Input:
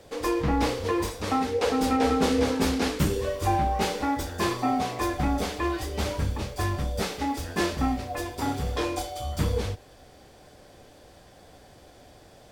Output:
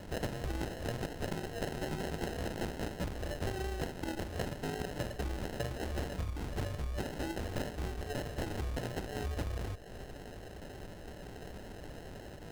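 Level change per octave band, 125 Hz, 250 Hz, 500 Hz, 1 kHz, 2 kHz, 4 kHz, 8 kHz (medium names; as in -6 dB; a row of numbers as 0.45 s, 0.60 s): -7.5 dB, -13.5 dB, -11.0 dB, -16.0 dB, -9.5 dB, -11.5 dB, -12.0 dB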